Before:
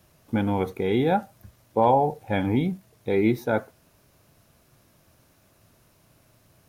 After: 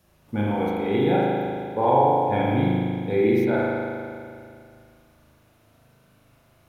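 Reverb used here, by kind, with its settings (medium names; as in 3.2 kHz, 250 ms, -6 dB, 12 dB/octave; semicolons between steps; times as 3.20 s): spring tank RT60 2.3 s, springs 38 ms, chirp 20 ms, DRR -6 dB; trim -4.5 dB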